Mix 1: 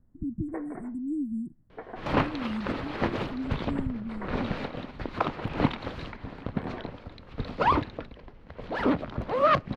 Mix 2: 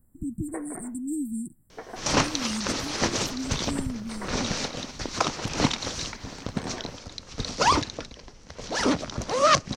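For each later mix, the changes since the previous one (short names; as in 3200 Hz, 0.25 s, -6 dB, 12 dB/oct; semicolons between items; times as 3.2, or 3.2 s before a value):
second sound: add synth low-pass 5900 Hz, resonance Q 4.3; master: remove air absorption 330 m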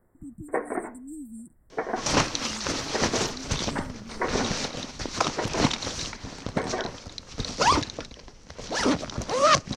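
speech -9.5 dB; first sound +11.0 dB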